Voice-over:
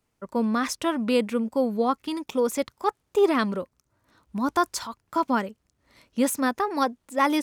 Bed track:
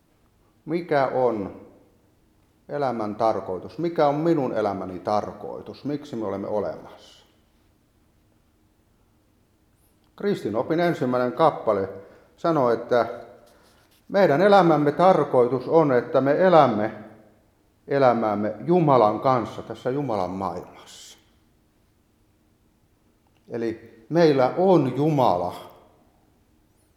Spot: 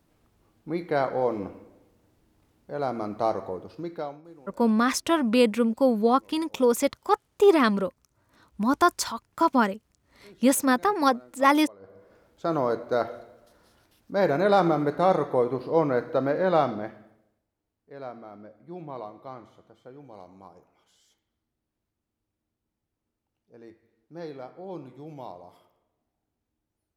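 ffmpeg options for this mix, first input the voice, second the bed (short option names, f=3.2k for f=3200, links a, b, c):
-filter_complex "[0:a]adelay=4250,volume=2.5dB[a];[1:a]volume=19dB,afade=t=out:st=3.53:d=0.69:silence=0.0630957,afade=t=in:st=11.79:d=0.48:silence=0.0707946,afade=t=out:st=16.26:d=1.21:silence=0.158489[b];[a][b]amix=inputs=2:normalize=0"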